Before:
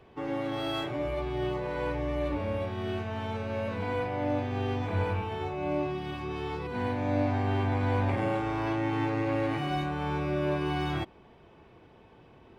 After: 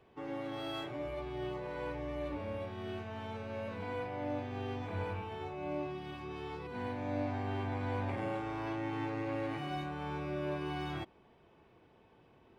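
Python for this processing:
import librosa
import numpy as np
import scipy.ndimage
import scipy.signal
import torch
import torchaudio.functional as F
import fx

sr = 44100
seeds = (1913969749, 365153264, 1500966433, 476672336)

y = fx.low_shelf(x, sr, hz=100.0, db=-4.5)
y = y * 10.0 ** (-7.5 / 20.0)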